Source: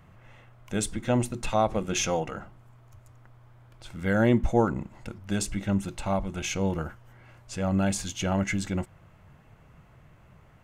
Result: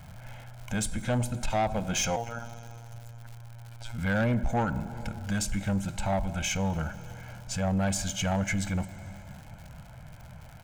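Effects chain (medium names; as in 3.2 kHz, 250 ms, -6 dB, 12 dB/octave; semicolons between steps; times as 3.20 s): plate-style reverb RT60 2.5 s, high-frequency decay 0.85×, DRR 16 dB; in parallel at +3 dB: compression, threshold -38 dBFS, peak gain reduction 20.5 dB; 2.16–3.98 s: on the sum: robot voice 117 Hz; comb 1.3 ms, depth 79%; crackle 150 per s -36 dBFS; saturation -17.5 dBFS, distortion -12 dB; trim -3.5 dB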